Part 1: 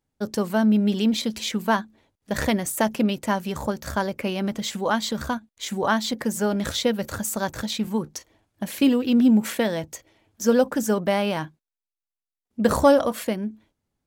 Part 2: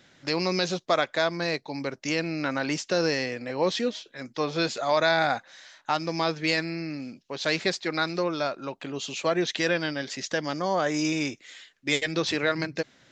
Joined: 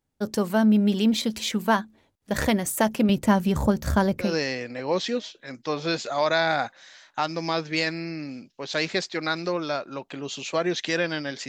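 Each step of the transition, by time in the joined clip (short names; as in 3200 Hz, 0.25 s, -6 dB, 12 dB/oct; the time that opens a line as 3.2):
part 1
3.09–4.36 low shelf 270 Hz +11 dB
4.27 switch to part 2 from 2.98 s, crossfade 0.18 s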